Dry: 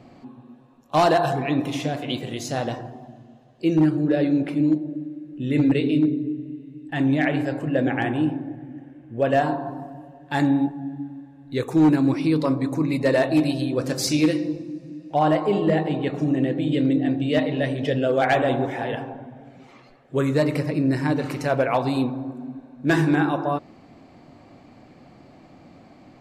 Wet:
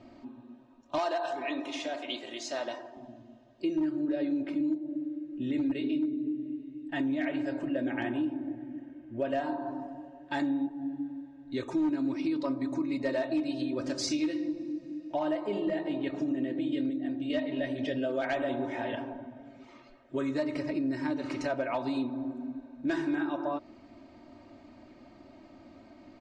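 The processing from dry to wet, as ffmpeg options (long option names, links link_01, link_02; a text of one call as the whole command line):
ffmpeg -i in.wav -filter_complex "[0:a]asettb=1/sr,asplit=3[link_01][link_02][link_03];[link_01]atrim=end=0.984[link_04];[link_02]atrim=start=0.98:end=2.97,asetpts=PTS-STARTPTS,afade=type=in:duration=0.004:curve=qsin,afade=type=out:start_time=1.986:duration=0.004:curve=qsin,highpass=470[link_05];[link_03]atrim=start=2.966[link_06];[link_04][link_05]acrossfade=duration=0.004:curve1=hsin:curve2=qsin[link_07];[link_07][link_06]acrossfade=duration=0.004:curve1=qsin:curve2=hsin,asplit=3[link_08][link_09][link_10];[link_08]atrim=end=16.902[link_11];[link_09]atrim=start=16.898:end=17.302,asetpts=PTS-STARTPTS,volume=-5.5dB[link_12];[link_10]atrim=start=17.298[link_13];[link_11][link_12]acrossfade=duration=0.004:curve1=hsin:curve2=hsin[link_14];[link_14][link_13]acrossfade=duration=0.004:curve1=hsin:curve2=hsin,lowpass=frequency=7100:width=0.5412,lowpass=frequency=7100:width=1.3066,aecho=1:1:3.2:0.78,acompressor=threshold=-23dB:ratio=3,volume=-6.5dB" out.wav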